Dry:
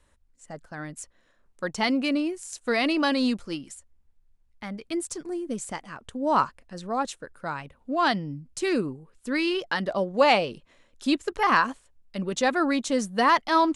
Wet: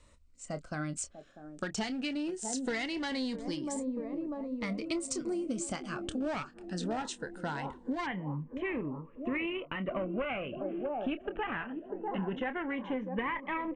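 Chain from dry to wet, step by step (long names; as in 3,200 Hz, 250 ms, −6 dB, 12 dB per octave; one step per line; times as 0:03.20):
double-tracking delay 27 ms −12 dB
delay with a band-pass on its return 645 ms, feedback 62%, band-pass 420 Hz, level −12 dB
asymmetric clip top −25.5 dBFS
dynamic equaliser 2,100 Hz, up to +7 dB, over −42 dBFS, Q 2.9
downward compressor 12 to 1, threshold −34 dBFS, peak gain reduction 17.5 dB
elliptic low-pass filter 8,700 Hz, stop band 40 dB, from 0:08.05 2,900 Hz
phaser whose notches keep moving one way rising 0.21 Hz
level +5 dB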